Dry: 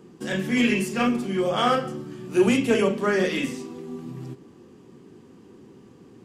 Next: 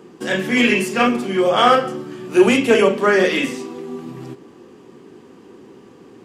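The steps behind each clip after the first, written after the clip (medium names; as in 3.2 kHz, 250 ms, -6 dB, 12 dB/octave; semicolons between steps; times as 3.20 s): tone controls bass -10 dB, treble -4 dB; trim +9 dB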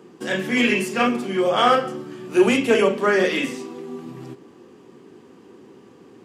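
high-pass 61 Hz; trim -3.5 dB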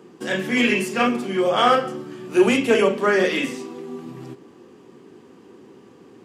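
no audible change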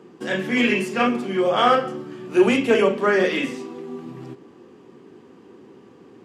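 treble shelf 6 kHz -8.5 dB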